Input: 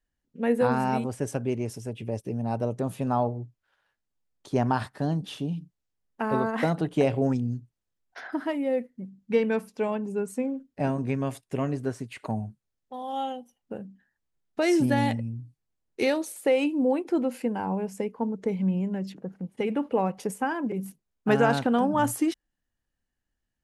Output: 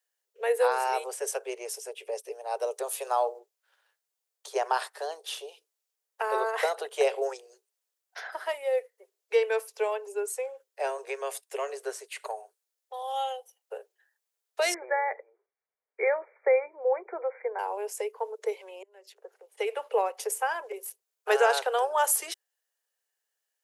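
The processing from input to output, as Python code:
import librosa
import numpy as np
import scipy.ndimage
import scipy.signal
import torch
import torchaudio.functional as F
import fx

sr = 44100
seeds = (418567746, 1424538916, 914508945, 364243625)

y = fx.high_shelf(x, sr, hz=3700.0, db=6.0, at=(2.61, 3.39))
y = fx.brickwall_lowpass(y, sr, high_hz=2400.0, at=(14.74, 17.59))
y = fx.edit(y, sr, fx.fade_in_span(start_s=18.83, length_s=0.76), tone=tone)
y = scipy.signal.sosfilt(scipy.signal.butter(16, 400.0, 'highpass', fs=sr, output='sos'), y)
y = fx.high_shelf(y, sr, hz=4800.0, db=11.0)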